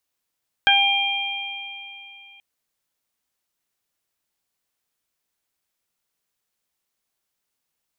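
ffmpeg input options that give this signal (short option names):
-f lavfi -i "aevalsrc='0.119*pow(10,-3*t/2.49)*sin(2*PI*798*t)+0.211*pow(10,-3*t/0.22)*sin(2*PI*1596*t)+0.133*pow(10,-3*t/3.41)*sin(2*PI*2394*t)+0.168*pow(10,-3*t/2.95)*sin(2*PI*3192*t)':d=1.73:s=44100"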